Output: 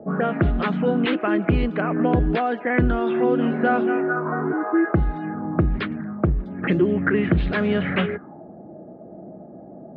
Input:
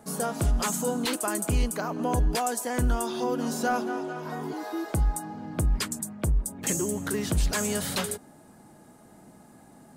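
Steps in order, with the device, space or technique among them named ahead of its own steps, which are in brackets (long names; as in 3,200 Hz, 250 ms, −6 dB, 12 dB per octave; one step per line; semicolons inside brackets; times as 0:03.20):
envelope filter bass rig (envelope-controlled low-pass 560–3,900 Hz up, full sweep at −23.5 dBFS; loudspeaker in its box 64–2,200 Hz, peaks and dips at 180 Hz +6 dB, 340 Hz +7 dB, 940 Hz −8 dB)
level +6.5 dB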